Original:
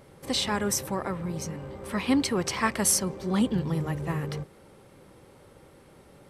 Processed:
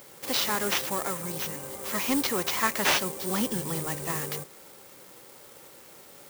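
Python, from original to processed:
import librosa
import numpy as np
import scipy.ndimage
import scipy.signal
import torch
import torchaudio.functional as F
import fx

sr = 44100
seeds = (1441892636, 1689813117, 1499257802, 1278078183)

y = fx.sample_hold(x, sr, seeds[0], rate_hz=8900.0, jitter_pct=20)
y = fx.riaa(y, sr, side='recording')
y = fx.slew_limit(y, sr, full_power_hz=430.0)
y = y * 10.0 ** (3.0 / 20.0)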